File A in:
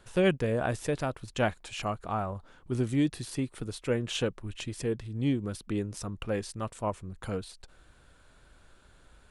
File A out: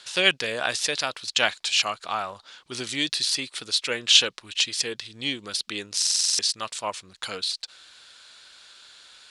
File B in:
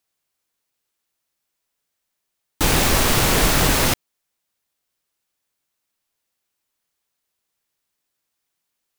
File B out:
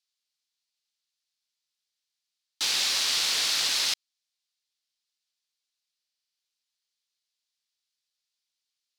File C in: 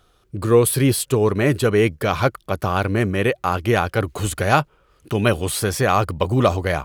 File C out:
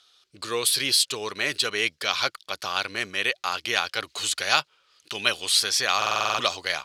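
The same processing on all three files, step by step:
band-pass 4400 Hz, Q 2; stuck buffer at 5.97, samples 2048, times 8; match loudness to -24 LUFS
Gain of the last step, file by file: +23.5, +1.5, +11.0 dB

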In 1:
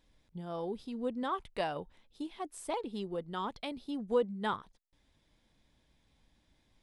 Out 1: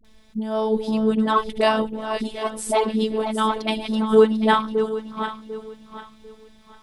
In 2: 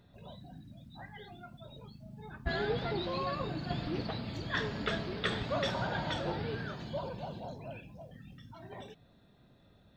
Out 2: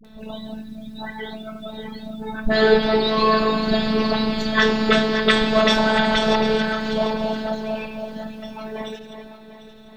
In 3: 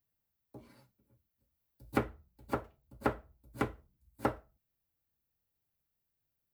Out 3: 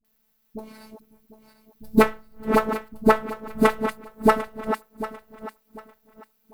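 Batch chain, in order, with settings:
regenerating reverse delay 0.373 s, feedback 52%, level -8.5 dB; robotiser 218 Hz; dispersion highs, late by 48 ms, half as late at 490 Hz; normalise peaks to -3 dBFS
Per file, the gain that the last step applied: +18.0, +18.5, +18.0 dB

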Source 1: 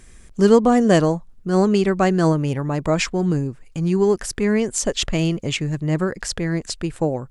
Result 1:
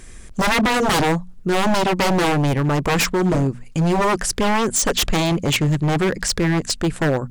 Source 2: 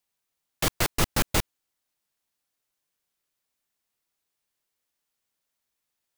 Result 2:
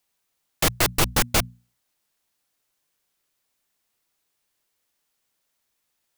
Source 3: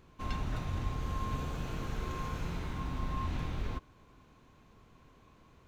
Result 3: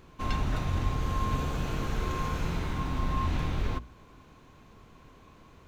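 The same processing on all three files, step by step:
notches 60/120/180/240 Hz; wavefolder -19 dBFS; gain +6.5 dB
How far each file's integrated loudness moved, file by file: +0.5, +4.5, +6.0 LU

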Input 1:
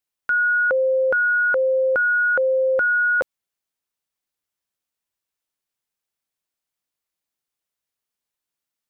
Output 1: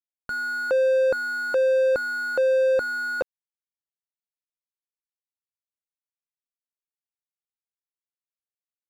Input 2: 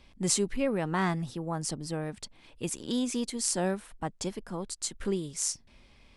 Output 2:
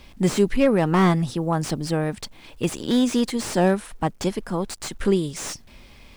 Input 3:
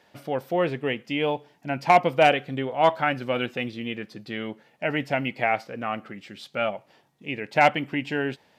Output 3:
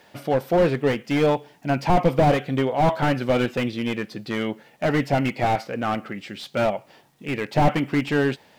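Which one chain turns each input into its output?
requantised 12-bit, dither none; slew limiter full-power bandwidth 50 Hz; match loudness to -23 LUFS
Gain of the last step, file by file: +2.0, +10.5, +6.5 dB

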